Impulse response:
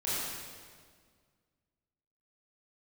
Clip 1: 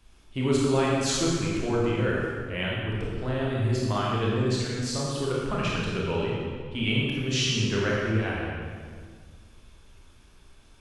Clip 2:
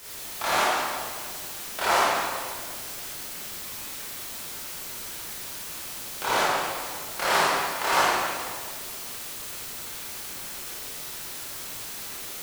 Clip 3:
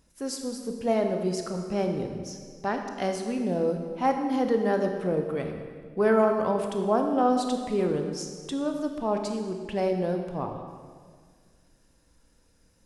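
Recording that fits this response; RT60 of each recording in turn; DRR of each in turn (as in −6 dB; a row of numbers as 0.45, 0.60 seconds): 2; 1.8, 1.8, 1.8 seconds; −5.0, −10.5, 4.0 decibels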